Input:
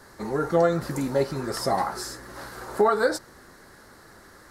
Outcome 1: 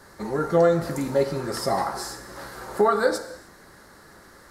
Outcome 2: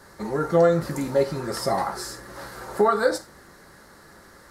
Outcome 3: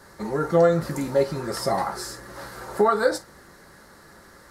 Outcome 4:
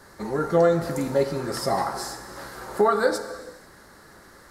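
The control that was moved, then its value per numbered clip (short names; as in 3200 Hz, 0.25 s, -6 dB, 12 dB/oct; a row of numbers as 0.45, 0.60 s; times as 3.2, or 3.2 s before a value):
non-linear reverb, gate: 340, 120, 80, 520 ms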